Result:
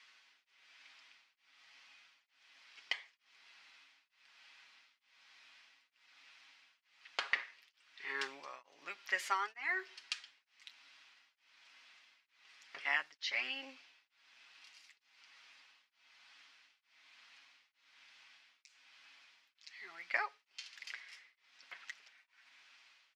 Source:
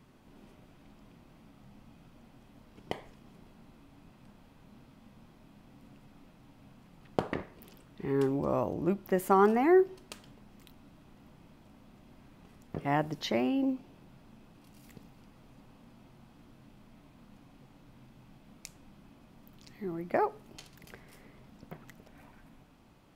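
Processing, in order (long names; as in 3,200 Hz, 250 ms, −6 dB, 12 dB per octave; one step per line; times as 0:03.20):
Chebyshev band-pass filter 1,900–5,400 Hz, order 2
comb filter 7.3 ms, depth 51%
tremolo along a rectified sine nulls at 1.1 Hz
level +9.5 dB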